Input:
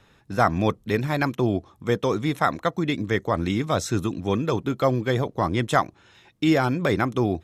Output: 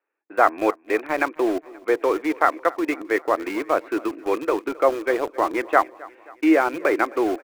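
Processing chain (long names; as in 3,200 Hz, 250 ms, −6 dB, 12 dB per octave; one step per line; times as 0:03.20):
noise gate with hold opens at −45 dBFS
Chebyshev band-pass filter 310–2,500 Hz, order 4
in parallel at −4.5 dB: centre clipping without the shift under −27.5 dBFS
on the sum: repeating echo 265 ms, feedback 55%, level −22 dB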